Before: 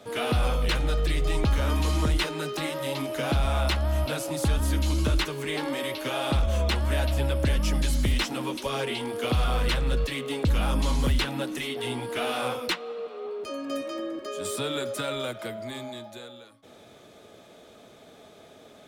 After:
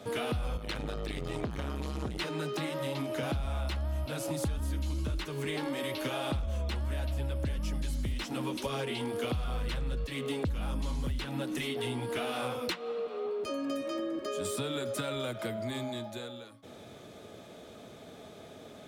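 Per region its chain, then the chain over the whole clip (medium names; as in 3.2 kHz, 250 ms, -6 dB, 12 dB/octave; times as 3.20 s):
0.57–3.23 s: high-pass 89 Hz + treble shelf 6.3 kHz -4.5 dB + transformer saturation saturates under 540 Hz
whole clip: high-pass 73 Hz 6 dB/octave; bass shelf 210 Hz +9 dB; compression 6:1, threshold -31 dBFS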